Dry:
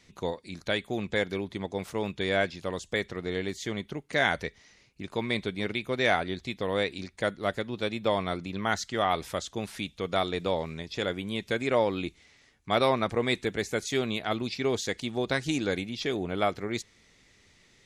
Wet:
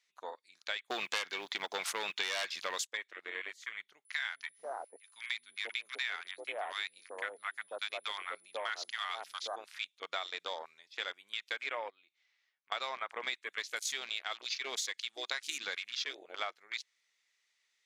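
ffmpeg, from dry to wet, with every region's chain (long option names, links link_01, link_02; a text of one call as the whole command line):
ffmpeg -i in.wav -filter_complex "[0:a]asettb=1/sr,asplit=3[link_01][link_02][link_03];[link_01]atrim=end=0.904[link_04];[link_02]atrim=start=0.9:end=2.87,asetpts=PTS-STARTPTS,afade=type=in:duration=0.004:curve=qsin,afade=type=out:start_time=1.966:duration=0.004:curve=qsin,highshelf=frequency=9700:gain=5.5,acrusher=bits=7:mode=log:mix=0:aa=0.000001,aeval=exprs='0.282*sin(PI/2*3.55*val(0)/0.282)':channel_layout=same[link_05];[link_03]atrim=start=2.866[link_06];[link_04][link_05]acrossfade=duration=0.004:curve1=hsin:curve2=qsin[link_07];[link_07][link_06]acrossfade=duration=0.004:curve1=qsin:curve2=hsin,asettb=1/sr,asplit=3[link_08][link_09][link_10];[link_08]atrim=end=4.054[link_11];[link_09]atrim=start=4.05:end=9.56,asetpts=PTS-STARTPTS,afade=type=in:duration=0.004:curve=qsin,afade=type=out:start_time=5.506:duration=0.004:curve=qsin,aeval=exprs='val(0)+0.00398*sin(2*PI*10000*n/s)':channel_layout=same,acrossover=split=270|950[link_12][link_13][link_14];[link_12]adelay=160[link_15];[link_13]adelay=490[link_16];[link_15][link_16][link_14]amix=inputs=3:normalize=0,atrim=end_sample=242991[link_17];[link_10]atrim=start=9.556[link_18];[link_11][link_17]acrossfade=duration=0.004:curve1=hsin:curve2=qsin[link_19];[link_19][link_18]acrossfade=duration=0.004:curve1=qsin:curve2=hsin,asettb=1/sr,asplit=3[link_20][link_21][link_22];[link_20]atrim=end=11.904[link_23];[link_21]atrim=start=11.9:end=12.72,asetpts=PTS-STARTPTS,afade=type=in:duration=0.004:curve=qsin,afade=type=out:start_time=0.816:duration=0.004:curve=qsin,lowpass=4700,acompressor=threshold=-45dB:ratio=3:attack=3.2:release=140:knee=1:detection=peak[link_24];[link_22]atrim=start=12.716[link_25];[link_23][link_24]acrossfade=duration=0.004:curve1=hsin:curve2=qsin[link_26];[link_26][link_25]acrossfade=duration=0.004:curve1=qsin:curve2=hsin,asettb=1/sr,asplit=3[link_27][link_28][link_29];[link_27]atrim=end=13.474[link_30];[link_28]atrim=start=13.47:end=16.04,asetpts=PTS-STARTPTS,afade=type=in:duration=0.004:curve=qsin,afade=type=out:start_time=2.566:duration=0.004:curve=qsin,highshelf=frequency=4500:gain=7.5,aeval=exprs='val(0)+0.00631*(sin(2*PI*50*n/s)+sin(2*PI*2*50*n/s)/2+sin(2*PI*3*50*n/s)/3+sin(2*PI*4*50*n/s)/4+sin(2*PI*5*50*n/s)/5)':channel_layout=same[link_31];[link_29]atrim=start=16.036[link_32];[link_30][link_31]acrossfade=duration=0.004:curve1=hsin:curve2=qsin[link_33];[link_33][link_32]acrossfade=duration=0.004:curve1=qsin:curve2=hsin,highpass=1200,afwtdn=0.00891,acompressor=threshold=-35dB:ratio=6,volume=1.5dB" out.wav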